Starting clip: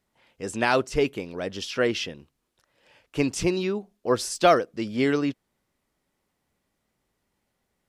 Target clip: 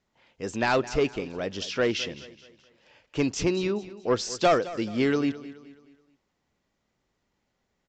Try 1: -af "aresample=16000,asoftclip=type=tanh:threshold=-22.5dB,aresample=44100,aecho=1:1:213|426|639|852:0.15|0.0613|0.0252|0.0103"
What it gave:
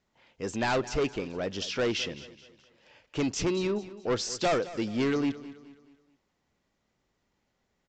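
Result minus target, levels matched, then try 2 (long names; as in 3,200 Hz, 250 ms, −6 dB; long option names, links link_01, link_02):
soft clipping: distortion +8 dB
-af "aresample=16000,asoftclip=type=tanh:threshold=-14dB,aresample=44100,aecho=1:1:213|426|639|852:0.15|0.0613|0.0252|0.0103"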